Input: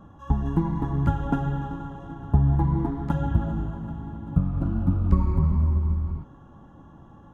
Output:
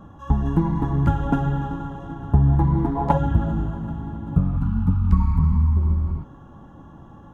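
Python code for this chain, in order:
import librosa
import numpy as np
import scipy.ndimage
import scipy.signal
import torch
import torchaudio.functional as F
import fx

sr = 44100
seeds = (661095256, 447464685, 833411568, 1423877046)

p1 = fx.spec_box(x, sr, start_s=2.96, length_s=0.21, low_hz=420.0, high_hz=1100.0, gain_db=12)
p2 = fx.ellip_bandstop(p1, sr, low_hz=250.0, high_hz=840.0, order=3, stop_db=40, at=(4.57, 5.77))
p3 = 10.0 ** (-16.5 / 20.0) * np.tanh(p2 / 10.0 ** (-16.5 / 20.0))
y = p2 + (p3 * 10.0 ** (-3.5 / 20.0))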